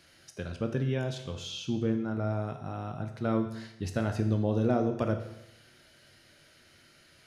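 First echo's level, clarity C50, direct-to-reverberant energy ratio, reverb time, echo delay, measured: no echo audible, 8.5 dB, 5.0 dB, 0.90 s, no echo audible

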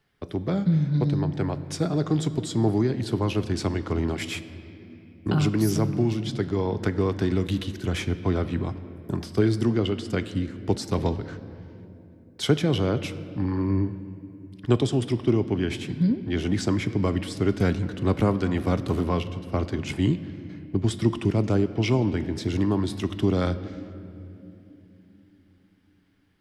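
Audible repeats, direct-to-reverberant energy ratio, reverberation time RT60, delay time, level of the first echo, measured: no echo audible, 11.0 dB, 3.0 s, no echo audible, no echo audible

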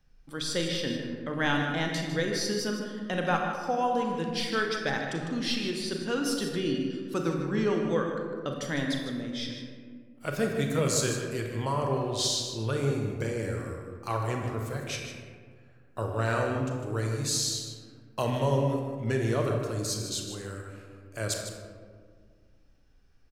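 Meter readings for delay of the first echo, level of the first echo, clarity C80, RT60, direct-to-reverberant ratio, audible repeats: 153 ms, −10.0 dB, 3.5 dB, 1.8 s, 1.0 dB, 1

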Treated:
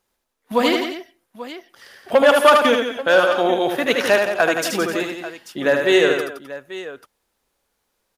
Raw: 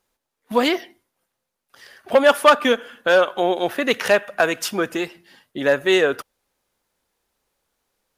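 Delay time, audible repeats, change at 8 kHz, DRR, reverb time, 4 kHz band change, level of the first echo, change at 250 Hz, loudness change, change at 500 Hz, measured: 77 ms, 4, +2.0 dB, no reverb audible, no reverb audible, +2.0 dB, −4.5 dB, +2.0 dB, +1.5 dB, +2.0 dB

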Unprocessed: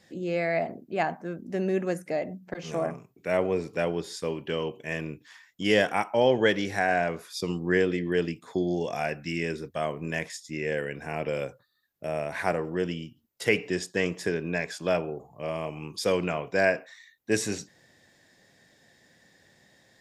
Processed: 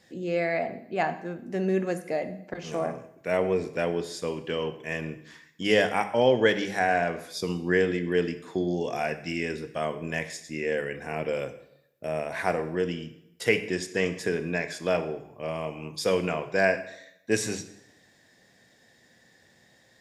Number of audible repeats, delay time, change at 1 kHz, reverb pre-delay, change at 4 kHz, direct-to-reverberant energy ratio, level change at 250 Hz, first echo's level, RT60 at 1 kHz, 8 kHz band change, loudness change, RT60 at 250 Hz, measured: no echo audible, no echo audible, +1.0 dB, 3 ms, +0.5 dB, 9.5 dB, 0.0 dB, no echo audible, 0.80 s, +0.5 dB, +0.5 dB, 0.75 s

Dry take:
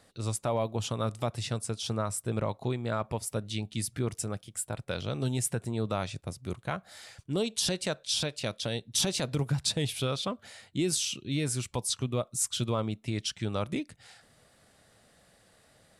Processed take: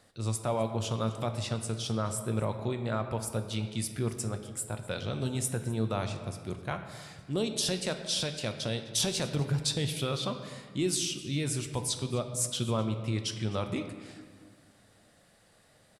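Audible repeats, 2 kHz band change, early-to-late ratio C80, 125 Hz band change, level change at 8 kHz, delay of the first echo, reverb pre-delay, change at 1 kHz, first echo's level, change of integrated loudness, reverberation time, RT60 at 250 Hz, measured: 1, −0.5 dB, 9.5 dB, +0.5 dB, −1.0 dB, 255 ms, 6 ms, −0.5 dB, −20.5 dB, −0.5 dB, 1.7 s, 2.2 s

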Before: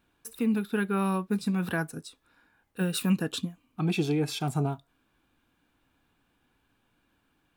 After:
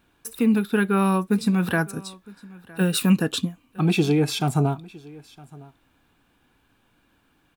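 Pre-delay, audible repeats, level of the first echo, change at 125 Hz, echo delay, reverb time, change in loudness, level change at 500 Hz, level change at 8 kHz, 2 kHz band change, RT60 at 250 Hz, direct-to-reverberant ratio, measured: no reverb audible, 1, −22.5 dB, +7.0 dB, 961 ms, no reverb audible, +7.0 dB, +7.0 dB, +7.0 dB, +7.0 dB, no reverb audible, no reverb audible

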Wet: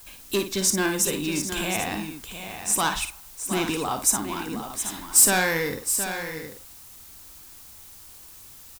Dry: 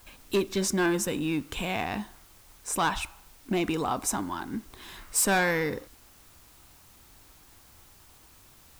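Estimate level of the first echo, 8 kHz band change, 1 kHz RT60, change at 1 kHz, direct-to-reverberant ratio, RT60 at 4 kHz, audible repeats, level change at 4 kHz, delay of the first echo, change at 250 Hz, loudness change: −8.5 dB, +10.5 dB, no reverb audible, +2.0 dB, no reverb audible, no reverb audible, 3, +6.5 dB, 54 ms, +1.0 dB, +5.0 dB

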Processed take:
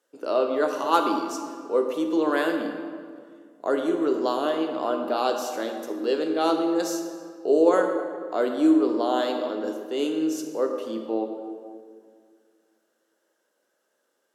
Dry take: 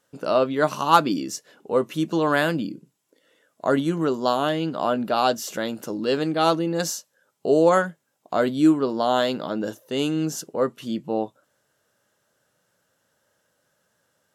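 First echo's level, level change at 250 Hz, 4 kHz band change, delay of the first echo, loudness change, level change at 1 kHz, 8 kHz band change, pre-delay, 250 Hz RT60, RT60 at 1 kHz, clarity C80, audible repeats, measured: no echo audible, −1.0 dB, −5.0 dB, no echo audible, −2.0 dB, −3.5 dB, −5.5 dB, 16 ms, 2.4 s, 1.9 s, 6.5 dB, no echo audible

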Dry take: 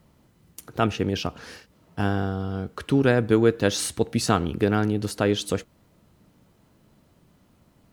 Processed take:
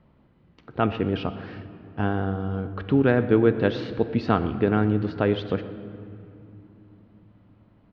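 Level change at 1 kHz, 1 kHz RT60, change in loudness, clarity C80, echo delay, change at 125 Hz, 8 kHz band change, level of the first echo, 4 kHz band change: 0.0 dB, 2.7 s, 0.0 dB, 12.5 dB, 123 ms, +0.5 dB, below −30 dB, −19.5 dB, −7.5 dB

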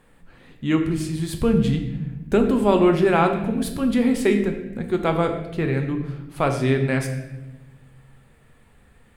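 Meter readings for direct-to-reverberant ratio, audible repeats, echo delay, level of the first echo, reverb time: 4.0 dB, no echo audible, no echo audible, no echo audible, 1.0 s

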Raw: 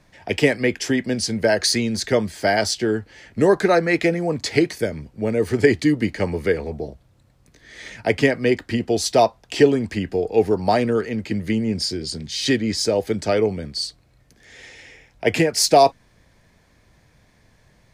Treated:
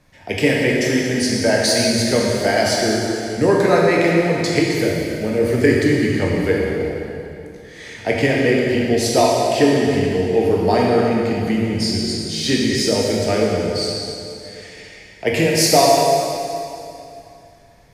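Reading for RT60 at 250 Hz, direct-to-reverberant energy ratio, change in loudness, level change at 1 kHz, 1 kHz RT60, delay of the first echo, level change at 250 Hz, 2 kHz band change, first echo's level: 2.9 s, −3.5 dB, +3.0 dB, +3.0 dB, 2.7 s, no echo audible, +3.5 dB, +3.5 dB, no echo audible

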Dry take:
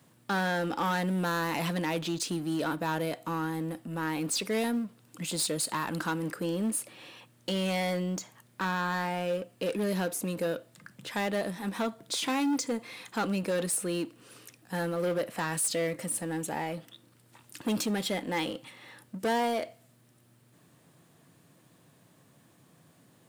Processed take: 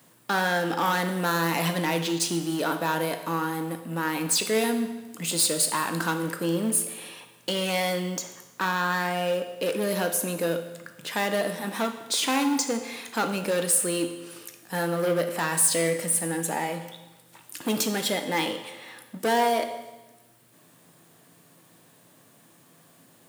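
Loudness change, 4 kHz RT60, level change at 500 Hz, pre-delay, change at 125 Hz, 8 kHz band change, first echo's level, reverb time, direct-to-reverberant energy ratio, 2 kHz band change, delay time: +5.5 dB, 1.1 s, +5.0 dB, 12 ms, +2.0 dB, +8.5 dB, no echo audible, 1.1 s, 7.0 dB, +6.0 dB, no echo audible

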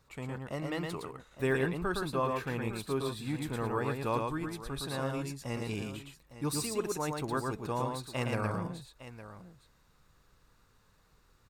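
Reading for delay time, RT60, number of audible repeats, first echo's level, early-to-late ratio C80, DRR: 113 ms, no reverb audible, 2, −3.5 dB, no reverb audible, no reverb audible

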